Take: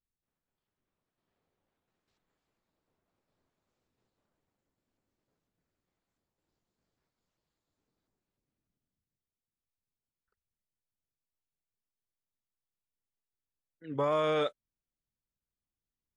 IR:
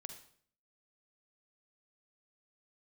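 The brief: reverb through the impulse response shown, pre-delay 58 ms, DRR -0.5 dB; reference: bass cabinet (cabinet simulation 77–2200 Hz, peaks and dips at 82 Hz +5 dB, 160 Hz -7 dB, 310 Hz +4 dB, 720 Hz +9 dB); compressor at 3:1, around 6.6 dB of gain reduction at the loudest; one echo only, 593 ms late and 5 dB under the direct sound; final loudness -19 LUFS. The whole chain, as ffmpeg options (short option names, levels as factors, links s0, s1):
-filter_complex "[0:a]acompressor=threshold=0.02:ratio=3,aecho=1:1:593:0.562,asplit=2[s0][s1];[1:a]atrim=start_sample=2205,adelay=58[s2];[s1][s2]afir=irnorm=-1:irlink=0,volume=1.88[s3];[s0][s3]amix=inputs=2:normalize=0,highpass=f=77:w=0.5412,highpass=f=77:w=1.3066,equalizer=f=82:t=q:w=4:g=5,equalizer=f=160:t=q:w=4:g=-7,equalizer=f=310:t=q:w=4:g=4,equalizer=f=720:t=q:w=4:g=9,lowpass=f=2200:w=0.5412,lowpass=f=2200:w=1.3066,volume=5.01"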